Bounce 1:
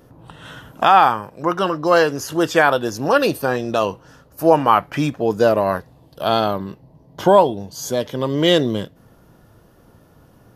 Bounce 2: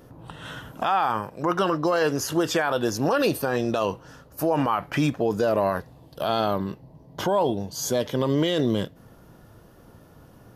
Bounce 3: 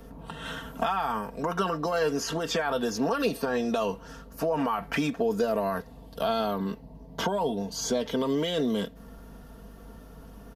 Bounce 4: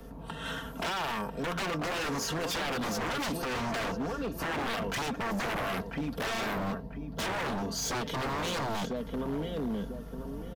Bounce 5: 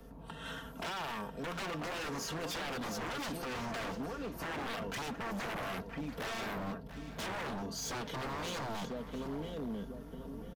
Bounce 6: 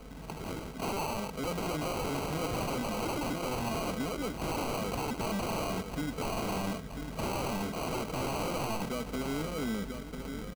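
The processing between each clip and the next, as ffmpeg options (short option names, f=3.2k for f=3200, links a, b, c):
-af "alimiter=limit=-13dB:level=0:latency=1:release=41"
-filter_complex "[0:a]aeval=exprs='val(0)+0.00355*(sin(2*PI*50*n/s)+sin(2*PI*2*50*n/s)/2+sin(2*PI*3*50*n/s)/3+sin(2*PI*4*50*n/s)/4+sin(2*PI*5*50*n/s)/5)':c=same,acrossover=split=190|6600[a][b][c];[a]acompressor=threshold=-40dB:ratio=4[d];[b]acompressor=threshold=-26dB:ratio=4[e];[c]acompressor=threshold=-52dB:ratio=4[f];[d][e][f]amix=inputs=3:normalize=0,aecho=1:1:4.4:0.68"
-filter_complex "[0:a]asplit=2[a][b];[b]adelay=994,lowpass=f=1.7k:p=1,volume=-8dB,asplit=2[c][d];[d]adelay=994,lowpass=f=1.7k:p=1,volume=0.37,asplit=2[e][f];[f]adelay=994,lowpass=f=1.7k:p=1,volume=0.37,asplit=2[g][h];[h]adelay=994,lowpass=f=1.7k:p=1,volume=0.37[i];[a][c][e][g][i]amix=inputs=5:normalize=0,acrossover=split=260|1100|4500[j][k][l][m];[j]dynaudnorm=f=960:g=5:m=5dB[n];[n][k][l][m]amix=inputs=4:normalize=0,aeval=exprs='0.0422*(abs(mod(val(0)/0.0422+3,4)-2)-1)':c=same"
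-af "aecho=1:1:688:0.2,volume=-6.5dB"
-af "acrusher=samples=25:mix=1:aa=0.000001,volume=5.5dB"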